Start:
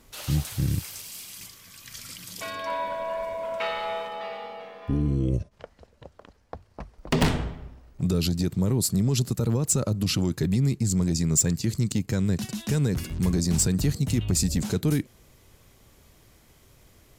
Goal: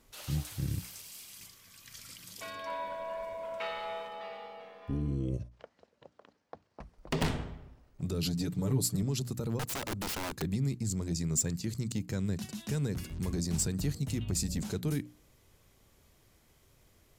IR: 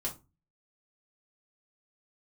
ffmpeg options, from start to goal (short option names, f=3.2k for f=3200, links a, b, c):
-filter_complex "[0:a]asettb=1/sr,asplit=3[a][b][c];[a]atrim=end=5.514[d];[b]atrim=start=5.51:end=6.8,asetpts=PTS-STARTPTS,afade=t=in:d=0.004:c=qsin,afade=t=out:st=1.286:d=0.004:c=qsin,highpass=180,lowpass=7k[e];[c]atrim=start=6.796[f];[d][e]acrossfade=d=0.004:c1=hsin:c2=qsin[g];[g][f]acrossfade=d=0.004:c1=qsin:c2=hsin,asettb=1/sr,asplit=3[h][i][j];[h]atrim=end=8.224[k];[i]atrim=start=8.22:end=9.03,asetpts=PTS-STARTPTS,afade=t=in:d=0.004:c=qsin,afade=t=out:st=0.806:d=0.004:c=qsin,aecho=1:1:6.9:0.88,atrim=end_sample=35721[l];[j]atrim=start=9.026[m];[k][l]acrossfade=d=0.004:c1=hsin:c2=qsin[n];[n][m]acrossfade=d=0.004:c1=qsin:c2=hsin,asettb=1/sr,asplit=3[o][p][q];[o]atrim=end=9.594[r];[p]atrim=start=9.59:end=10.42,asetpts=PTS-STARTPTS,afade=t=in:d=0.004:c=qsin,afade=t=out:st=0.826:d=0.004:c=qsin,aeval=exprs='(mod(12.6*val(0)+1,2)-1)/12.6':c=same[s];[q]atrim=start=10.416[t];[r][s]acrossfade=d=0.004:c1=hsin:c2=qsin[u];[u][t]acrossfade=d=0.004:c1=qsin:c2=hsin,bandreject=f=60:t=h:w=6,bandreject=f=120:t=h:w=6,bandreject=f=180:t=h:w=6,bandreject=f=240:t=h:w=6,bandreject=f=300:t=h:w=6,volume=-8dB"